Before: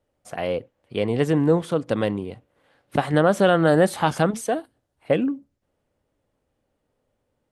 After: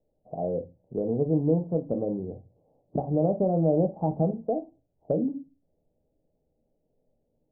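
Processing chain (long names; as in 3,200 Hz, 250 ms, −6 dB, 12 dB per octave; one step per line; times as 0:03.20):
Butterworth low-pass 760 Hz 48 dB per octave
downward compressor 1.5 to 1, threshold −29 dBFS, peak gain reduction 6 dB
on a send: convolution reverb RT60 0.25 s, pre-delay 4 ms, DRR 6.5 dB
on the sum: level −1.5 dB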